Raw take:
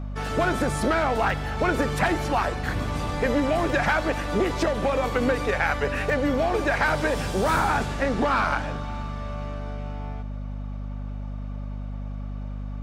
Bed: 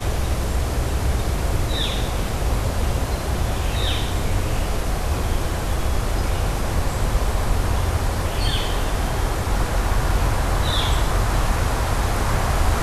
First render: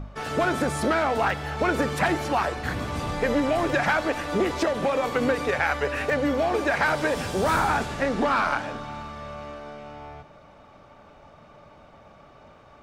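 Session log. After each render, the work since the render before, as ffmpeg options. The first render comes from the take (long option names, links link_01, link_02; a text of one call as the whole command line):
ffmpeg -i in.wav -af "bandreject=frequency=50:width_type=h:width=4,bandreject=frequency=100:width_type=h:width=4,bandreject=frequency=150:width_type=h:width=4,bandreject=frequency=200:width_type=h:width=4,bandreject=frequency=250:width_type=h:width=4" out.wav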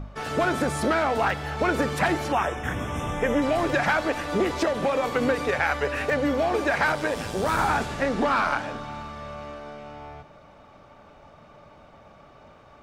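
ffmpeg -i in.wav -filter_complex "[0:a]asettb=1/sr,asplit=3[link_01][link_02][link_03];[link_01]atrim=end=2.324[link_04];[link_02]atrim=start=2.32:end=3.42,asetpts=PTS-STARTPTS,afade=type=in:duration=0.004:curve=qsin,afade=type=out:start_time=1.096:duration=0.004:curve=qsin,asuperstop=centerf=4400:order=12:qfactor=2.9[link_05];[link_03]atrim=start=3.416[link_06];[link_04][link_05]acrossfade=duration=0.004:curve1=hsin:curve2=qsin[link_07];[link_07][link_06]acrossfade=duration=0.004:curve1=qsin:curve2=hsin,asettb=1/sr,asplit=3[link_08][link_09][link_10];[link_08]atrim=end=6.924[link_11];[link_09]atrim=start=6.92:end=7.59,asetpts=PTS-STARTPTS,afade=type=in:duration=0.004:curve=qsin,afade=type=out:start_time=0.666:duration=0.004:curve=qsin,tremolo=f=110:d=0.462[link_12];[link_10]atrim=start=7.586[link_13];[link_11][link_12]acrossfade=duration=0.004:curve1=hsin:curve2=qsin[link_14];[link_14][link_13]acrossfade=duration=0.004:curve1=qsin:curve2=hsin" out.wav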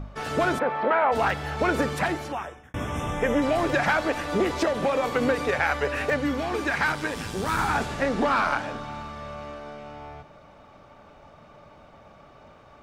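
ffmpeg -i in.wav -filter_complex "[0:a]asplit=3[link_01][link_02][link_03];[link_01]afade=type=out:start_time=0.58:duration=0.02[link_04];[link_02]highpass=300,equalizer=frequency=320:width_type=q:width=4:gain=-8,equalizer=frequency=490:width_type=q:width=4:gain=5,equalizer=frequency=930:width_type=q:width=4:gain=8,lowpass=frequency=2700:width=0.5412,lowpass=frequency=2700:width=1.3066,afade=type=in:start_time=0.58:duration=0.02,afade=type=out:start_time=1.11:duration=0.02[link_05];[link_03]afade=type=in:start_time=1.11:duration=0.02[link_06];[link_04][link_05][link_06]amix=inputs=3:normalize=0,asettb=1/sr,asplit=3[link_07][link_08][link_09];[link_07]atrim=end=6.164[link_10];[link_08]atrim=start=6.16:end=7.75,asetpts=PTS-STARTPTS,afade=type=in:duration=0.004:curve=qsin,afade=type=out:start_time=1.586:duration=0.004:curve=qsin,equalizer=frequency=600:width_type=o:width=0.77:gain=-9[link_11];[link_09]atrim=start=7.746[link_12];[link_10][link_11]acrossfade=duration=0.004:curve1=hsin:curve2=qsin[link_13];[link_13][link_12]acrossfade=duration=0.004:curve1=qsin:curve2=hsin,asplit=2[link_14][link_15];[link_14]atrim=end=2.74,asetpts=PTS-STARTPTS,afade=type=out:start_time=1.8:duration=0.94[link_16];[link_15]atrim=start=2.74,asetpts=PTS-STARTPTS,afade=type=in:duration=0.004:curve=hsin[link_17];[link_16][link_17]concat=n=2:v=0:a=1" out.wav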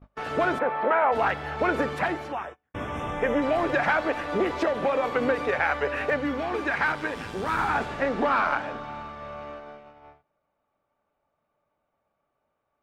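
ffmpeg -i in.wav -af "bass=frequency=250:gain=-6,treble=frequency=4000:gain=-12,agate=range=-26dB:threshold=-39dB:ratio=16:detection=peak" out.wav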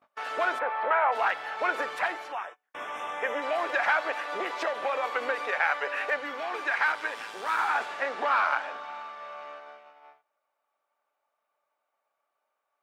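ffmpeg -i in.wav -af "highpass=750" out.wav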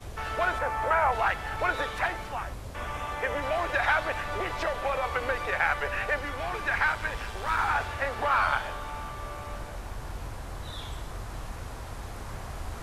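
ffmpeg -i in.wav -i bed.wav -filter_complex "[1:a]volume=-18dB[link_01];[0:a][link_01]amix=inputs=2:normalize=0" out.wav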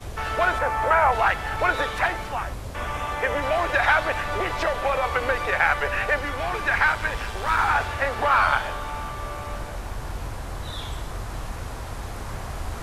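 ffmpeg -i in.wav -af "volume=5.5dB" out.wav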